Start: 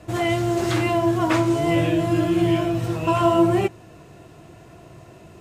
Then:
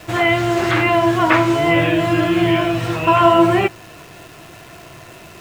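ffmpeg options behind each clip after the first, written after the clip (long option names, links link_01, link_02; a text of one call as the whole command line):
ffmpeg -i in.wav -filter_complex "[0:a]equalizer=frequency=2300:width=0.4:gain=12,acrossover=split=2500[link_01][link_02];[link_02]acompressor=threshold=-33dB:ratio=4:attack=1:release=60[link_03];[link_01][link_03]amix=inputs=2:normalize=0,acrusher=bits=8:dc=4:mix=0:aa=0.000001,volume=1.5dB" out.wav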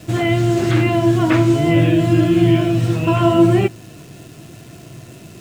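ffmpeg -i in.wav -af "equalizer=frequency=125:width_type=o:width=1:gain=9,equalizer=frequency=250:width_type=o:width=1:gain=8,equalizer=frequency=1000:width_type=o:width=1:gain=-7,equalizer=frequency=2000:width_type=o:width=1:gain=-4,equalizer=frequency=8000:width_type=o:width=1:gain=4,volume=-2.5dB" out.wav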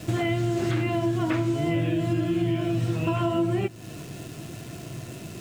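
ffmpeg -i in.wav -af "acompressor=threshold=-24dB:ratio=4" out.wav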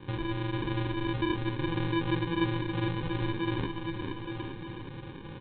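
ffmpeg -i in.wav -af "aresample=8000,acrusher=samples=12:mix=1:aa=0.000001,aresample=44100,aecho=1:1:450|855|1220|1548|1843:0.631|0.398|0.251|0.158|0.1,volume=-7.5dB" out.wav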